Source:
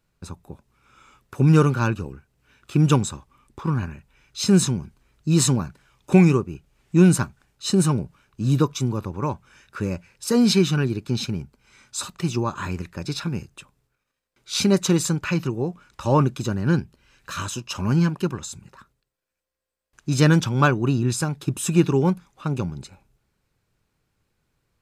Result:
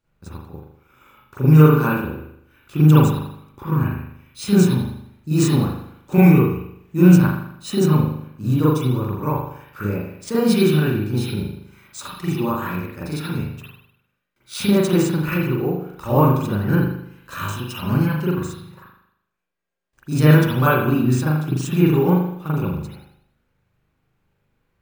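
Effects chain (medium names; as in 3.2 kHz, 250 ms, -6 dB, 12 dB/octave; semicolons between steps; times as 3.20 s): reverberation RT60 0.70 s, pre-delay 39 ms, DRR -9.5 dB; careless resampling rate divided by 3×, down none, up hold; trim -6.5 dB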